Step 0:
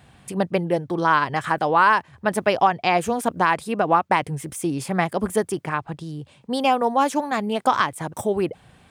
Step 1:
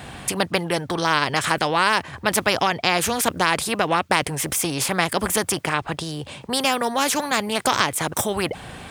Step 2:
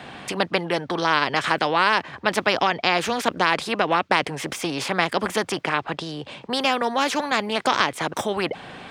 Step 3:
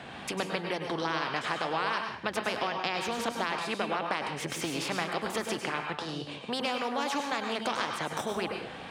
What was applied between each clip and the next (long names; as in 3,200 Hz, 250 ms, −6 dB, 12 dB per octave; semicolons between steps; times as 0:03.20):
every bin compressed towards the loudest bin 2 to 1; level +3.5 dB
three-way crossover with the lows and the highs turned down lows −14 dB, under 160 Hz, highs −18 dB, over 5,500 Hz
downward compressor 2.5 to 1, threshold −26 dBFS, peak gain reduction 9 dB; tape wow and flutter 55 cents; dense smooth reverb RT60 0.51 s, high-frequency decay 0.95×, pre-delay 90 ms, DRR 3.5 dB; level −5 dB